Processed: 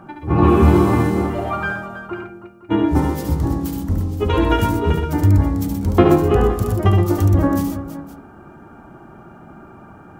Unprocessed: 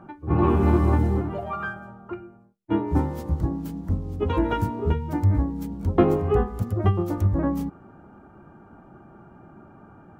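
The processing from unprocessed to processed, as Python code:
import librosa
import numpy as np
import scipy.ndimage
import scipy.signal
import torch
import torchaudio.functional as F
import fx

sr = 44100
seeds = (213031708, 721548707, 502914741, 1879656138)

y = fx.high_shelf(x, sr, hz=2400.0, db=9.5)
y = fx.echo_multitap(y, sr, ms=(71, 123, 126, 325, 515), db=(-4.5, -9.5, -9.0, -11.5, -16.5))
y = y * 10.0 ** (4.5 / 20.0)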